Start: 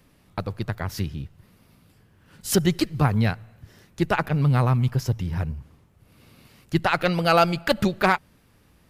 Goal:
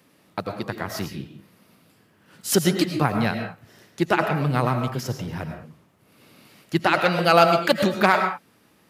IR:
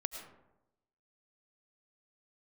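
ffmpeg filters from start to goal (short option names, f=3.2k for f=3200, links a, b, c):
-filter_complex "[0:a]highpass=190[a];[1:a]atrim=start_sample=2205,afade=t=out:st=0.27:d=0.01,atrim=end_sample=12348[b];[a][b]afir=irnorm=-1:irlink=0,volume=3dB"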